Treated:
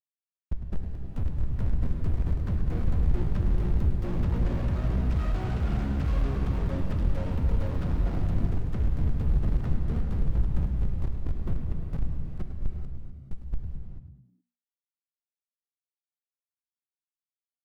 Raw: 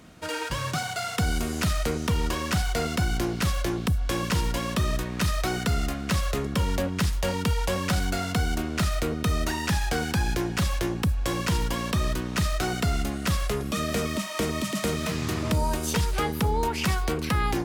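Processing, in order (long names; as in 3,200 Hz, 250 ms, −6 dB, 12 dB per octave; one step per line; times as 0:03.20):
source passing by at 0:05.81, 6 m/s, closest 3 metres
high-pass filter 87 Hz 12 dB per octave
comparator with hysteresis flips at −40 dBFS
high-shelf EQ 11,000 Hz +9.5 dB
brickwall limiter −39.5 dBFS, peak gain reduction 11.5 dB
upward compression, threshold −55 dBFS
wrap-around overflow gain 46 dB
RIAA equalisation playback
echo with shifted repeats 104 ms, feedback 36%, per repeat +60 Hz, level −12 dB
reverb whose tail is shaped and stops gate 460 ms flat, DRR 2.5 dB
level +8 dB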